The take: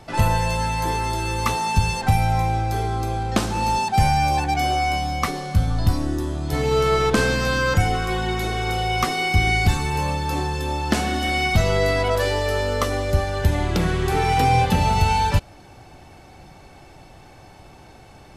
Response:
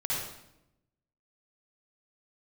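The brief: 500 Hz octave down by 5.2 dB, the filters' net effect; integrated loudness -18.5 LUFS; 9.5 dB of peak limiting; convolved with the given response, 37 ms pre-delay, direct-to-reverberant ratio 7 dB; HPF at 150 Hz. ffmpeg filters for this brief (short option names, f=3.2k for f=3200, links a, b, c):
-filter_complex "[0:a]highpass=150,equalizer=f=500:t=o:g=-6.5,alimiter=limit=-16.5dB:level=0:latency=1,asplit=2[a][b];[1:a]atrim=start_sample=2205,adelay=37[c];[b][c]afir=irnorm=-1:irlink=0,volume=-13.5dB[d];[a][d]amix=inputs=2:normalize=0,volume=7dB"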